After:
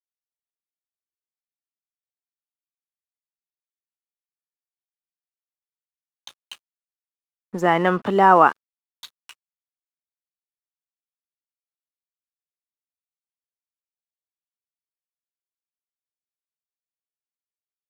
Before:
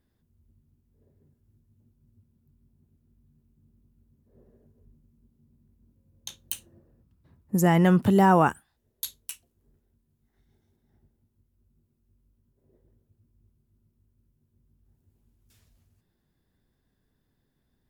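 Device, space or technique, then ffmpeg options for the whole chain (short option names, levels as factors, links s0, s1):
pocket radio on a weak battery: -af "highpass=380,lowpass=3200,aeval=exprs='sgn(val(0))*max(abs(val(0))-0.00266,0)':c=same,equalizer=f=1200:t=o:w=0.39:g=6,volume=2.11"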